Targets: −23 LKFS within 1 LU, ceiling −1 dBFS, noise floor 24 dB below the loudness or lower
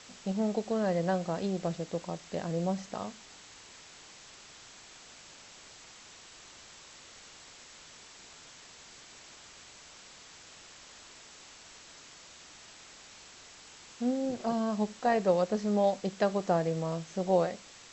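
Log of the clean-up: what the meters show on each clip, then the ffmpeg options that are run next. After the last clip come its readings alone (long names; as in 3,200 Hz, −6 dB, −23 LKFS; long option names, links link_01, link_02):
background noise floor −53 dBFS; target noise floor −56 dBFS; integrated loudness −31.5 LKFS; sample peak −13.5 dBFS; target loudness −23.0 LKFS
→ -af "afftdn=noise_reduction=6:noise_floor=-53"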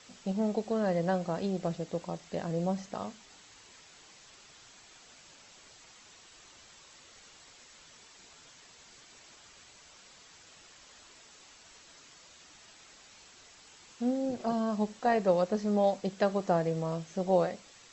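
background noise floor −56 dBFS; integrated loudness −31.5 LKFS; sample peak −13.5 dBFS; target loudness −23.0 LKFS
→ -af "volume=8.5dB"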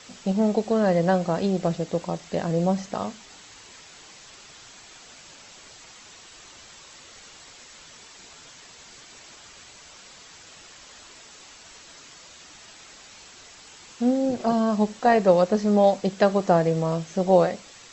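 integrated loudness −23.0 LKFS; sample peak −5.0 dBFS; background noise floor −48 dBFS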